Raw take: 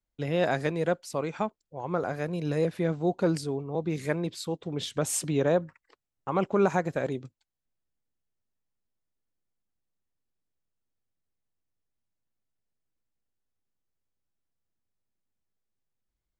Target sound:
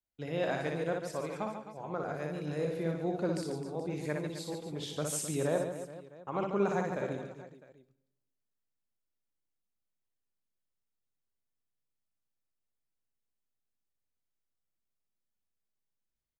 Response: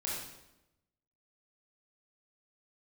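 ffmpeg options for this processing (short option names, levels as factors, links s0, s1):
-filter_complex "[0:a]lowshelf=f=66:g=-6,aecho=1:1:60|144|261.6|426.2|656.7:0.631|0.398|0.251|0.158|0.1,asplit=2[s0][s1];[1:a]atrim=start_sample=2205,highshelf=f=6900:g=10.5[s2];[s1][s2]afir=irnorm=-1:irlink=0,volume=0.112[s3];[s0][s3]amix=inputs=2:normalize=0,volume=0.376"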